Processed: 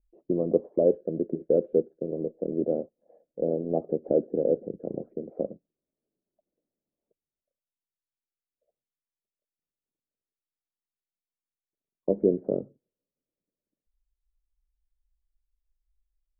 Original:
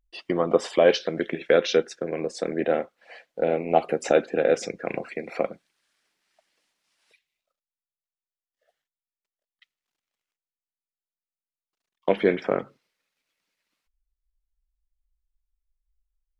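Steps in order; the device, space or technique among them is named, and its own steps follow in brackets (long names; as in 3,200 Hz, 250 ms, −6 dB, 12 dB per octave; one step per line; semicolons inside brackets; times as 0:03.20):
under water (low-pass filter 460 Hz 24 dB per octave; parametric band 600 Hz +5 dB 0.24 octaves)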